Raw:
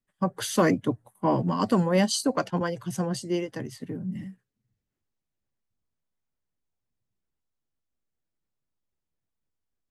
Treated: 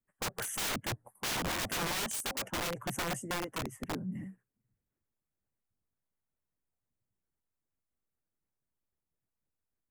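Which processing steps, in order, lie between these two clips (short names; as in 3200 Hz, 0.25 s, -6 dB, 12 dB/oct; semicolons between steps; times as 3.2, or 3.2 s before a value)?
harmonic-percussive split harmonic -6 dB; Butterworth band-stop 4200 Hz, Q 0.77; wrapped overs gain 29 dB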